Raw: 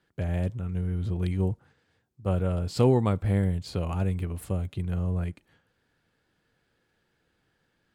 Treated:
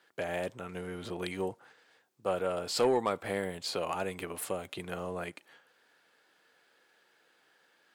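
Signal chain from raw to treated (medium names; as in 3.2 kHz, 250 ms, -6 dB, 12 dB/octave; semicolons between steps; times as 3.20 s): high-pass 510 Hz 12 dB/octave; in parallel at -0.5 dB: compression, threshold -42 dBFS, peak gain reduction 17.5 dB; on the sum: saturation -20 dBFS, distortion -18 dB; trim +2 dB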